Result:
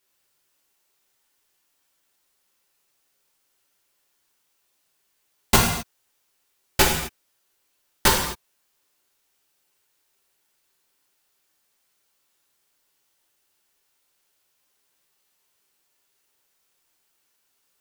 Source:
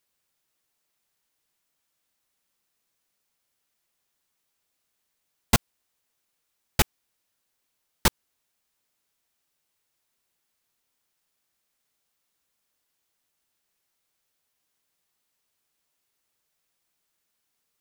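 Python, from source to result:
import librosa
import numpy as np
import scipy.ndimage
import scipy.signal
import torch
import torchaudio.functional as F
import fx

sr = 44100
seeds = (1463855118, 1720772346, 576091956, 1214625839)

y = fx.low_shelf(x, sr, hz=200.0, db=-4.5)
y = fx.rev_gated(y, sr, seeds[0], gate_ms=280, shape='falling', drr_db=-3.0)
y = y * 10.0 ** (2.5 / 20.0)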